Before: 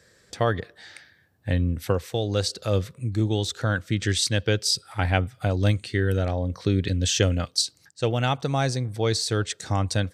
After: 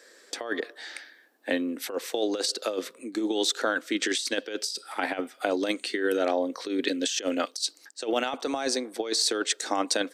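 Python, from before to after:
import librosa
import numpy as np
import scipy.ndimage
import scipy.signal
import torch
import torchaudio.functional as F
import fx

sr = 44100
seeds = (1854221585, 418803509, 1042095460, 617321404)

y = scipy.signal.sosfilt(scipy.signal.butter(8, 260.0, 'highpass', fs=sr, output='sos'), x)
y = fx.over_compress(y, sr, threshold_db=-28.0, ratio=-0.5)
y = y * 10.0 ** (2.0 / 20.0)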